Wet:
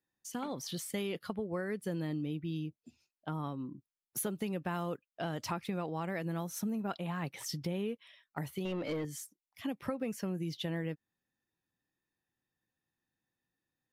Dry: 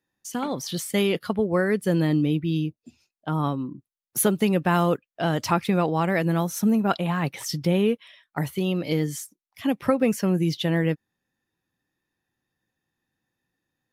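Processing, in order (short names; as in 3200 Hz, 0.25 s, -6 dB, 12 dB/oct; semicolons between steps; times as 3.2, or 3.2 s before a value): 8.65–9.05 overdrive pedal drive 22 dB, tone 1100 Hz, clips at -12.5 dBFS; compressor 3:1, threshold -26 dBFS, peak gain reduction 8 dB; gain -8.5 dB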